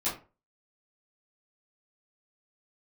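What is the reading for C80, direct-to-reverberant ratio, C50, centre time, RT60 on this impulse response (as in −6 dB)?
13.5 dB, −11.5 dB, 8.0 dB, 31 ms, 0.35 s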